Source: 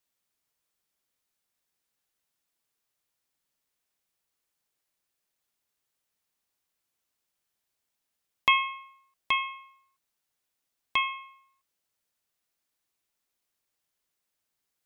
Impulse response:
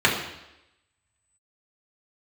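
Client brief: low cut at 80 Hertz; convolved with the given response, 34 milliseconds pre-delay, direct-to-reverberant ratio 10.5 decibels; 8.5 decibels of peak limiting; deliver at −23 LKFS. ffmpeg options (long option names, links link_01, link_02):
-filter_complex "[0:a]highpass=80,alimiter=limit=-17.5dB:level=0:latency=1,asplit=2[link_01][link_02];[1:a]atrim=start_sample=2205,adelay=34[link_03];[link_02][link_03]afir=irnorm=-1:irlink=0,volume=-30dB[link_04];[link_01][link_04]amix=inputs=2:normalize=0,volume=7dB"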